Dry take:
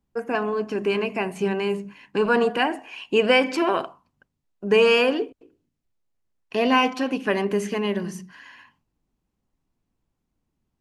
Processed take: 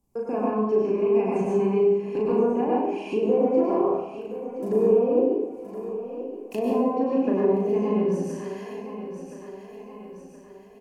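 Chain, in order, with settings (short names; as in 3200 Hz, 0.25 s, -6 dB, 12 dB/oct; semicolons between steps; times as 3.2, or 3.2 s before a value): 3.69–6.63 block floating point 5-bit; treble ducked by the level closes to 660 Hz, closed at -16 dBFS; bell 1500 Hz -14.5 dB 0.61 oct; compressor 1.5:1, threshold -38 dBFS, peak gain reduction 8.5 dB; bell 3500 Hz -15 dB 1.3 oct; notch 1900 Hz, Q 12; doubler 37 ms -2 dB; feedback echo 1.021 s, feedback 44%, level -13.5 dB; reverb RT60 0.75 s, pre-delay 87 ms, DRR -4 dB; mismatched tape noise reduction encoder only; gain +1 dB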